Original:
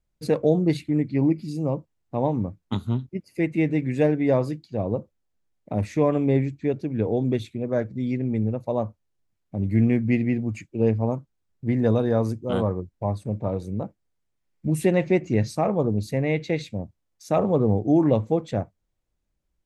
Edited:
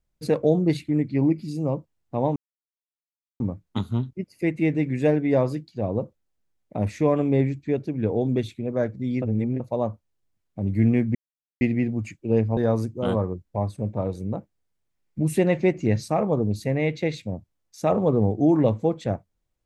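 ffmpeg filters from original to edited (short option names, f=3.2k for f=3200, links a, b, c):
-filter_complex "[0:a]asplit=6[a][b][c][d][e][f];[a]atrim=end=2.36,asetpts=PTS-STARTPTS,afade=t=out:st=2.356:d=0.004:c=hsin,apad=pad_dur=1.04[g];[b]atrim=start=2.36:end=8.182,asetpts=PTS-STARTPTS,afade=t=in:d=0.004:c=hsin[h];[c]atrim=start=8.178:end=8.562,asetpts=PTS-STARTPTS,areverse[i];[d]atrim=start=8.558:end=10.11,asetpts=PTS-STARTPTS,afade=t=out:st=1.548:d=0.004:c=hsin,apad=pad_dur=0.46[j];[e]atrim=start=10.11:end=11.072,asetpts=PTS-STARTPTS,afade=t=in:d=0.004:c=hsin[k];[f]atrim=start=12.038[l];[g][h]concat=n=2:v=0:a=1[m];[m][i]acrossfade=d=0.004:c1=hsin:c2=hsin[n];[j][k]concat=n=2:v=0:a=1[o];[n][o]acrossfade=d=0.004:c1=hsin:c2=hsin[p];[p][l]acrossfade=d=0.004:c1=hsin:c2=hsin"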